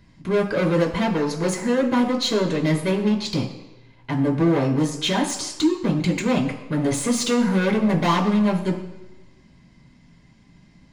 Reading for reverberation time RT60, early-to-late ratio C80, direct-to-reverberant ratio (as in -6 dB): 1.1 s, 11.0 dB, -0.5 dB